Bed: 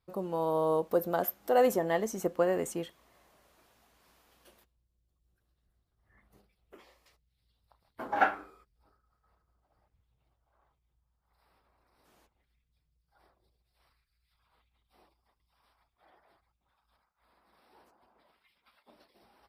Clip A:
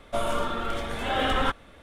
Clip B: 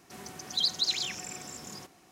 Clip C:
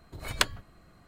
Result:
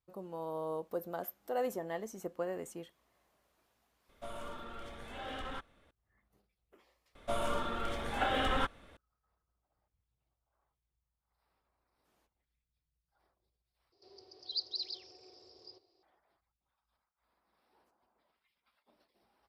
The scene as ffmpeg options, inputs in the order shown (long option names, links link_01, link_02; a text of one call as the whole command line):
ffmpeg -i bed.wav -i cue0.wav -i cue1.wav -filter_complex "[1:a]asplit=2[link_01][link_02];[0:a]volume=-10dB[link_03];[link_01]asoftclip=type=tanh:threshold=-18dB[link_04];[2:a]firequalizer=gain_entry='entry(110,0);entry(160,-24);entry(260,-9);entry(370,11);entry(770,-1);entry(1600,-13);entry(3300,-4);entry(4800,15);entry(6800,-26)':delay=0.05:min_phase=1[link_05];[link_03]asplit=2[link_06][link_07];[link_06]atrim=end=13.924[link_08];[link_05]atrim=end=2.11,asetpts=PTS-STARTPTS,volume=-17.5dB[link_09];[link_07]atrim=start=16.026[link_10];[link_04]atrim=end=1.82,asetpts=PTS-STARTPTS,volume=-16dB,afade=type=in:duration=0.004:curve=hsin,afade=type=out:start_time=1.816:duration=0.004:curve=hsin,adelay=180369S[link_11];[link_02]atrim=end=1.82,asetpts=PTS-STARTPTS,volume=-7dB,afade=type=in:duration=0.004:curve=hsin,afade=type=out:start_time=1.816:duration=0.004:curve=hsin,adelay=7150[link_12];[link_08][link_09]acrossfade=duration=0.004:curve1=hsin:curve2=hsin[link_13];[link_13][link_10]acrossfade=duration=0.004:curve1=hsin:curve2=hsin[link_14];[link_14][link_11][link_12]amix=inputs=3:normalize=0" out.wav